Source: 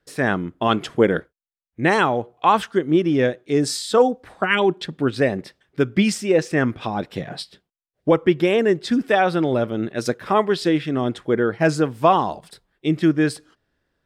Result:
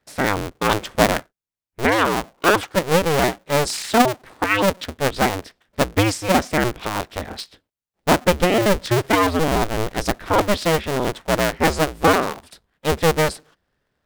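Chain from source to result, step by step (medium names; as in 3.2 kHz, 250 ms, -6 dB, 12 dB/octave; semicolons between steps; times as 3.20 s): cycle switcher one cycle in 2, inverted; 8.33–10.57 s: bass shelf 68 Hz +11 dB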